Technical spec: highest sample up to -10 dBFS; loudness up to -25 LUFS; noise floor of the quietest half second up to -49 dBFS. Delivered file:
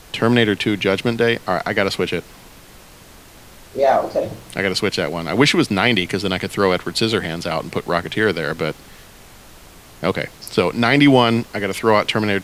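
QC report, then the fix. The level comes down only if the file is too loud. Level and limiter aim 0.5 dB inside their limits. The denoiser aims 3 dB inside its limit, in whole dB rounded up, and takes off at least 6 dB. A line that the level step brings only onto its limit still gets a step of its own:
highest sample -1.5 dBFS: fail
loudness -18.5 LUFS: fail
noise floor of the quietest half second -43 dBFS: fail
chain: gain -7 dB; limiter -10.5 dBFS

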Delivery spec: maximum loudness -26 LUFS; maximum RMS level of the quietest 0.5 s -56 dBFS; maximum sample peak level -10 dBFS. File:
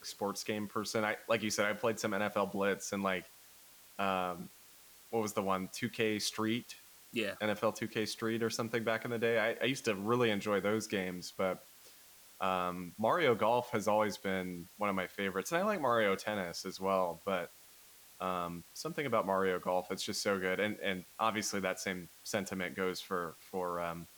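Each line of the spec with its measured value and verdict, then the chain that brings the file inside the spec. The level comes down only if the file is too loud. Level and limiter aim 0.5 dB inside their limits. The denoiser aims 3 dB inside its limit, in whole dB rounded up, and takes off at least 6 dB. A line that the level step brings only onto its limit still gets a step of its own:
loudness -35.0 LUFS: OK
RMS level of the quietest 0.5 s -59 dBFS: OK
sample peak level -18.5 dBFS: OK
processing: none

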